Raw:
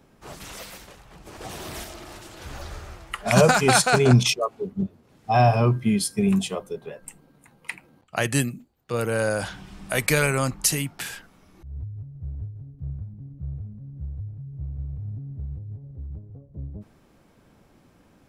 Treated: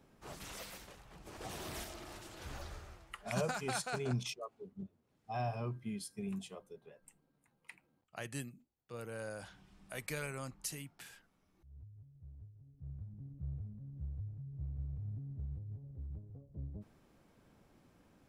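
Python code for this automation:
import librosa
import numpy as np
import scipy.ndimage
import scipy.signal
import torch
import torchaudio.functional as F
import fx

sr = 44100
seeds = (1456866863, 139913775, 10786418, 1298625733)

y = fx.gain(x, sr, db=fx.line((2.52, -8.5), (3.46, -20.0), (12.59, -20.0), (13.18, -9.0)))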